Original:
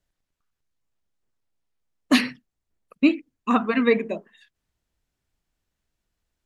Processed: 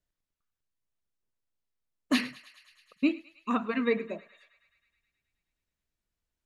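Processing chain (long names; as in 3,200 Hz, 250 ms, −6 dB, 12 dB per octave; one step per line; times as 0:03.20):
notch filter 780 Hz, Q 13
on a send: feedback echo with a high-pass in the loop 106 ms, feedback 77%, high-pass 830 Hz, level −18.5 dB
on the sum: level −8 dB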